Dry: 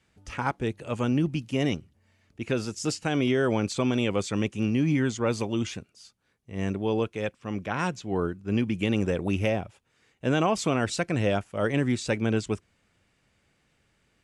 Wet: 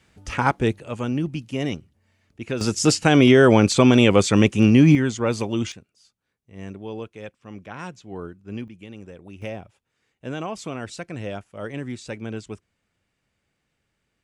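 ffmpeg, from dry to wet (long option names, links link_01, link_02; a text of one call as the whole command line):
ffmpeg -i in.wav -af "asetnsamples=nb_out_samples=441:pad=0,asendcmd='0.79 volume volume 0dB;2.61 volume volume 11dB;4.95 volume volume 3.5dB;5.72 volume volume -7dB;8.68 volume volume -15dB;9.42 volume volume -6.5dB',volume=8dB" out.wav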